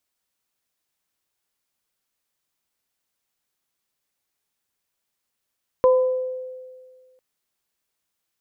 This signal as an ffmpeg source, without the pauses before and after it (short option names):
-f lavfi -i "aevalsrc='0.282*pow(10,-3*t/1.8)*sin(2*PI*512*t)+0.1*pow(10,-3*t/0.65)*sin(2*PI*1010*t)':d=1.35:s=44100"